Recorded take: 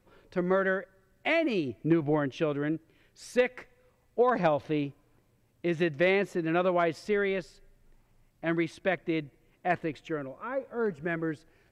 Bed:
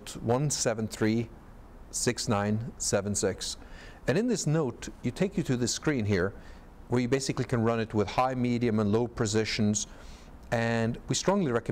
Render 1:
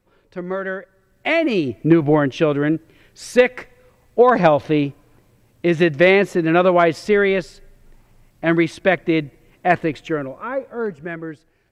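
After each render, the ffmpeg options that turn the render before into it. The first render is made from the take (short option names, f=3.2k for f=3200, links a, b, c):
-af "dynaudnorm=f=120:g=21:m=13dB"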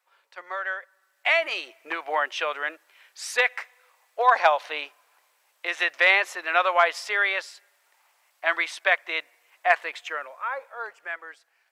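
-af "highpass=f=780:w=0.5412,highpass=f=780:w=1.3066"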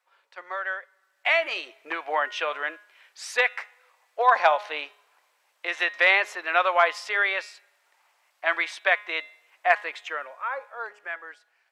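-af "highshelf=f=8.6k:g=-9.5,bandreject=f=207.9:t=h:w=4,bandreject=f=415.8:t=h:w=4,bandreject=f=623.7:t=h:w=4,bandreject=f=831.6:t=h:w=4,bandreject=f=1.0395k:t=h:w=4,bandreject=f=1.2474k:t=h:w=4,bandreject=f=1.4553k:t=h:w=4,bandreject=f=1.6632k:t=h:w=4,bandreject=f=1.8711k:t=h:w=4,bandreject=f=2.079k:t=h:w=4,bandreject=f=2.2869k:t=h:w=4,bandreject=f=2.4948k:t=h:w=4,bandreject=f=2.7027k:t=h:w=4,bandreject=f=2.9106k:t=h:w=4,bandreject=f=3.1185k:t=h:w=4,bandreject=f=3.3264k:t=h:w=4,bandreject=f=3.5343k:t=h:w=4,bandreject=f=3.7422k:t=h:w=4,bandreject=f=3.9501k:t=h:w=4,bandreject=f=4.158k:t=h:w=4"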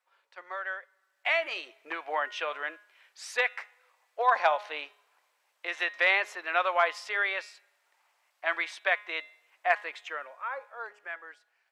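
-af "volume=-5dB"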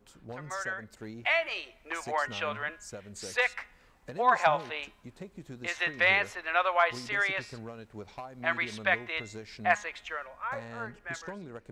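-filter_complex "[1:a]volume=-16.5dB[a];[0:a][a]amix=inputs=2:normalize=0"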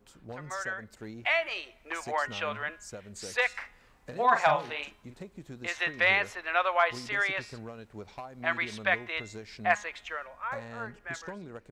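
-filter_complex "[0:a]asplit=3[a][b][c];[a]afade=t=out:st=3.53:d=0.02[d];[b]asplit=2[e][f];[f]adelay=41,volume=-7dB[g];[e][g]amix=inputs=2:normalize=0,afade=t=in:st=3.53:d=0.02,afade=t=out:st=5.22:d=0.02[h];[c]afade=t=in:st=5.22:d=0.02[i];[d][h][i]amix=inputs=3:normalize=0"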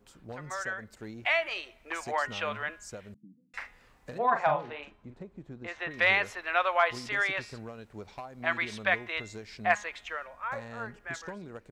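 -filter_complex "[0:a]asettb=1/sr,asplit=3[a][b][c];[a]atrim=end=3.144[d];[b]atrim=start=3.14:end=3.54,asetpts=PTS-STARTPTS,afade=t=in:d=0.004:c=qsin,afade=t=out:st=0.396:d=0.004:c=qsin,asuperpass=centerf=200:order=12:qfactor=1.2[e];[c]atrim=start=3.536[f];[d][e]acrossfade=d=0.004:c1=hsin:c2=qsin[g];[g][f]acrossfade=d=0.004:c1=qsin:c2=hsin,asettb=1/sr,asplit=3[h][i][j];[h]atrim=end=4.184[k];[i]atrim=start=4.18:end=5.91,asetpts=PTS-STARTPTS,afade=t=in:d=0.004:c=qsin,afade=t=out:st=1.726:d=0.004:c=qsin,lowpass=f=1.1k:p=1[l];[j]atrim=start=5.906[m];[k][l]acrossfade=d=0.004:c1=hsin:c2=qsin[n];[n][m]acrossfade=d=0.004:c1=qsin:c2=hsin"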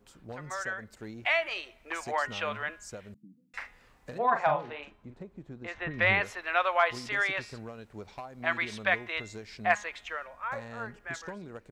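-filter_complex "[0:a]asettb=1/sr,asplit=3[a][b][c];[a]atrim=end=5.744[d];[b]atrim=start=5.74:end=6.21,asetpts=PTS-STARTPTS,afade=t=in:d=0.004:c=qsin,afade=t=out:st=0.466:d=0.004:c=qsin,bass=f=250:g=11,treble=f=4k:g=-11[e];[c]atrim=start=6.206[f];[d][e]acrossfade=d=0.004:c1=hsin:c2=qsin[g];[g][f]acrossfade=d=0.004:c1=qsin:c2=hsin"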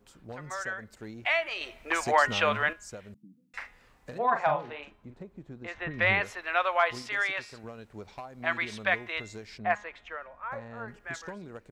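-filter_complex "[0:a]asettb=1/sr,asplit=3[a][b][c];[a]atrim=end=7.024[d];[b]atrim=start=7.02:end=7.64,asetpts=PTS-STARTPTS,afade=t=in:d=0.004:c=qsin,afade=t=out:st=0.616:d=0.004:c=qsin,lowshelf=f=320:g=-9.5[e];[c]atrim=start=7.636[f];[d][e]acrossfade=d=0.004:c1=hsin:c2=qsin[g];[g][f]acrossfade=d=0.004:c1=qsin:c2=hsin,asettb=1/sr,asplit=3[h][i][j];[h]atrim=end=9.584[k];[i]atrim=start=9.58:end=10.88,asetpts=PTS-STARTPTS,afade=t=in:d=0.004:c=qsin,afade=t=out:st=1.296:d=0.004:c=qsin,lowpass=f=1.5k:p=1[l];[j]atrim=start=10.876[m];[k][l]acrossfade=d=0.004:c1=hsin:c2=qsin[n];[n][m]acrossfade=d=0.004:c1=qsin:c2=hsin,asplit=3[o][p][q];[o]atrim=end=1.612[r];[p]atrim=start=1.608:end=2.732,asetpts=PTS-STARTPTS,volume=7.5dB[s];[q]atrim=start=2.728[t];[r][s]acrossfade=d=0.004:c1=hsin:c2=hsin[u];[u][t]acrossfade=d=0.004:c1=hsin:c2=hsin"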